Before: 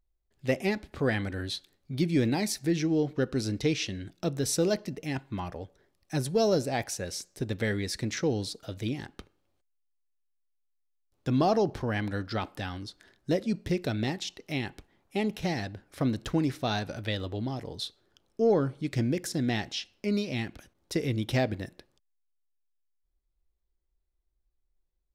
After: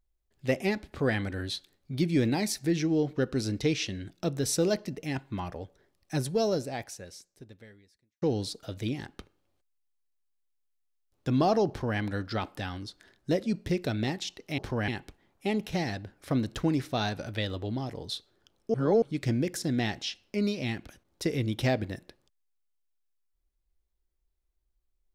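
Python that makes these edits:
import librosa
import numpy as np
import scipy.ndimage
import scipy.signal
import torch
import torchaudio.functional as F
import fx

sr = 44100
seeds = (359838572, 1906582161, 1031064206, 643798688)

y = fx.edit(x, sr, fx.fade_out_span(start_s=6.19, length_s=2.03, curve='qua'),
    fx.duplicate(start_s=11.69, length_s=0.3, to_s=14.58),
    fx.reverse_span(start_s=18.44, length_s=0.28), tone=tone)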